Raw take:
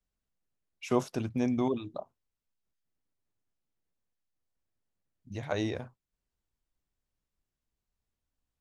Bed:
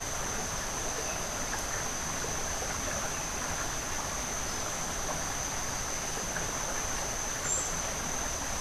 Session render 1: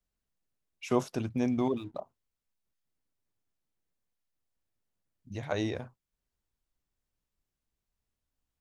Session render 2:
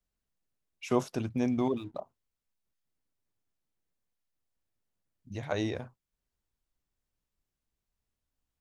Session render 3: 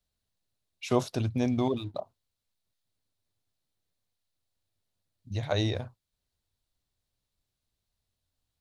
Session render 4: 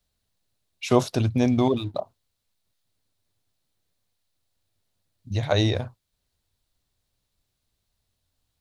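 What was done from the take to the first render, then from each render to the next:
1.42–2 backlash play -54 dBFS
nothing audible
fifteen-band EQ 100 Hz +10 dB, 630 Hz +4 dB, 4000 Hz +10 dB, 10000 Hz +4 dB
gain +6.5 dB

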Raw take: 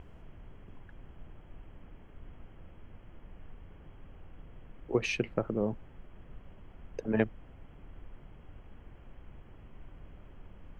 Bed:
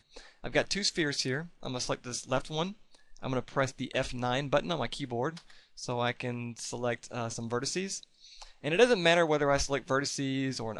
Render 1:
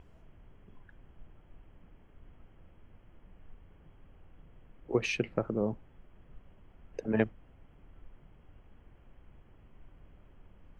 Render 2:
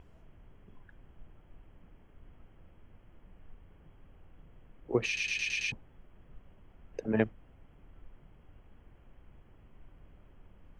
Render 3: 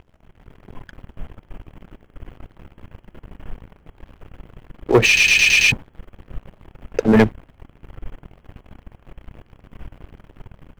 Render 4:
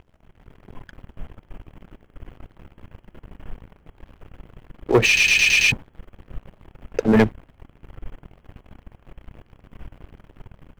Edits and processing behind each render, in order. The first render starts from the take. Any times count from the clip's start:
noise print and reduce 6 dB
5.06 stutter in place 0.11 s, 6 plays
sample leveller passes 3; AGC gain up to 9.5 dB
gain -2.5 dB

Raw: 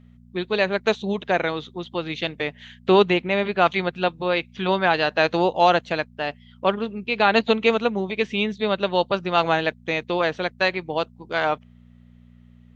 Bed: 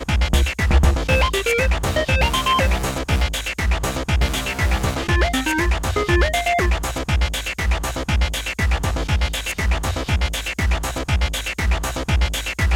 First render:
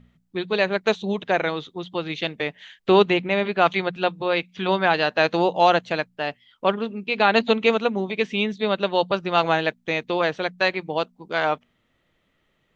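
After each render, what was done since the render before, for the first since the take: de-hum 60 Hz, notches 4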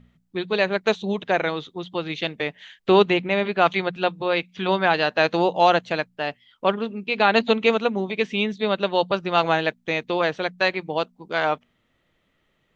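nothing audible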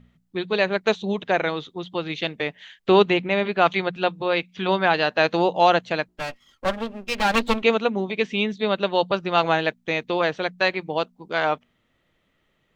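6.08–7.63 minimum comb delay 3.7 ms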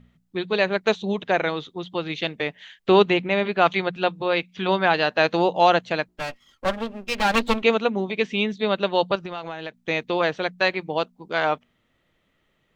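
9.15–9.74 compressor, threshold -29 dBFS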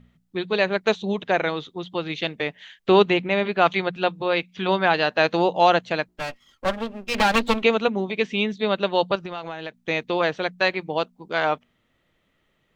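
7.14–7.88 three-band squash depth 70%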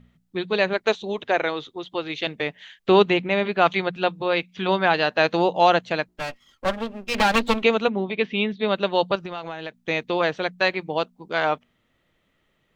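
0.73–2.27 bell 180 Hz -12.5 dB 0.44 oct; 7.89–8.68 LPF 4100 Hz 24 dB/oct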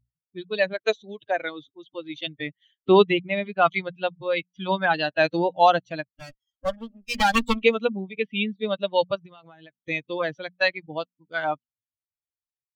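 per-bin expansion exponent 2; AGC gain up to 3 dB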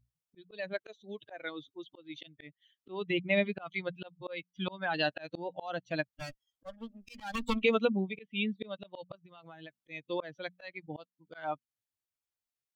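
limiter -15 dBFS, peak gain reduction 11 dB; auto swell 0.445 s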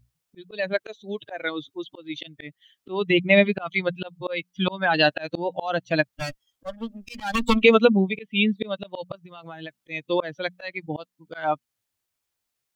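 gain +11.5 dB

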